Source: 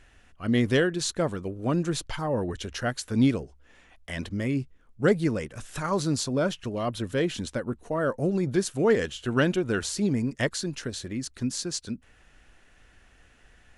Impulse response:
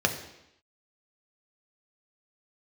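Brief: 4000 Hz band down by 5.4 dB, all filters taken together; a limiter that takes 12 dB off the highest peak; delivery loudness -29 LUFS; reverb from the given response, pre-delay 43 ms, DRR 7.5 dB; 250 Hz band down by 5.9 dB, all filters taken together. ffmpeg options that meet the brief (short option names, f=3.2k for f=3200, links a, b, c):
-filter_complex "[0:a]equalizer=f=250:t=o:g=-8,equalizer=f=4k:t=o:g=-7,alimiter=level_in=1dB:limit=-24dB:level=0:latency=1,volume=-1dB,asplit=2[a][b];[1:a]atrim=start_sample=2205,adelay=43[c];[b][c]afir=irnorm=-1:irlink=0,volume=-19.5dB[d];[a][d]amix=inputs=2:normalize=0,volume=5dB"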